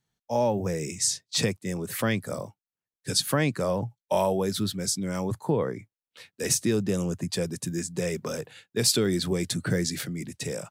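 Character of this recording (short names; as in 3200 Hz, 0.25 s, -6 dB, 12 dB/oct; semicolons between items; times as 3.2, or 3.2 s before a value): noise floor -96 dBFS; spectral tilt -4.0 dB/oct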